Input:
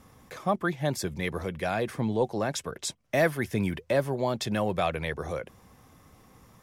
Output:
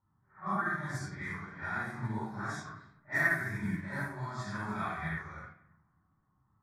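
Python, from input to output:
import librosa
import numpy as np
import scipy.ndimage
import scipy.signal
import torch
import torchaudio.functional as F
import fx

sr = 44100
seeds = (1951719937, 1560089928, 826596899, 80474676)

p1 = fx.phase_scramble(x, sr, seeds[0], window_ms=200)
p2 = fx.peak_eq(p1, sr, hz=1800.0, db=10.0, octaves=1.3)
p3 = p2 + fx.echo_wet_highpass(p2, sr, ms=273, feedback_pct=57, hz=1400.0, wet_db=-17, dry=0)
p4 = fx.room_shoebox(p3, sr, seeds[1], volume_m3=2200.0, walls='furnished', distance_m=4.6)
p5 = fx.env_lowpass(p4, sr, base_hz=1500.0, full_db=-15.5)
p6 = fx.low_shelf(p5, sr, hz=69.0, db=-9.5)
p7 = fx.env_lowpass(p6, sr, base_hz=840.0, full_db=-18.5)
p8 = fx.fixed_phaser(p7, sr, hz=1200.0, stages=4)
p9 = fx.upward_expand(p8, sr, threshold_db=-44.0, expansion=1.5)
y = p9 * 10.0 ** (-7.5 / 20.0)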